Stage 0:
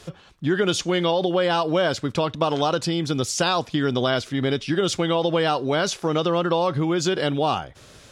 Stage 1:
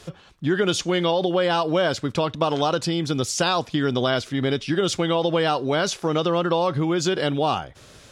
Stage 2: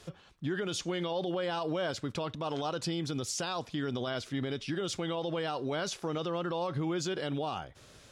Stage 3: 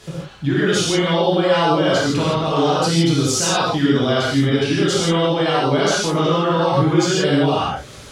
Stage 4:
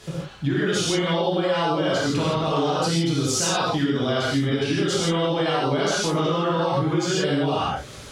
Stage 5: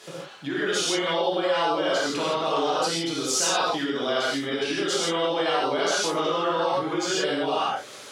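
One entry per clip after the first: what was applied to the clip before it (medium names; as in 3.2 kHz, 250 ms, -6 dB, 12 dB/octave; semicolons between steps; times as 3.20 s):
no audible change
peak limiter -17 dBFS, peak gain reduction 9 dB; trim -8 dB
gated-style reverb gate 190 ms flat, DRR -8 dB; trim +8.5 dB
compression, threshold -17 dBFS, peak gain reduction 8 dB; trim -1.5 dB
high-pass 380 Hz 12 dB/octave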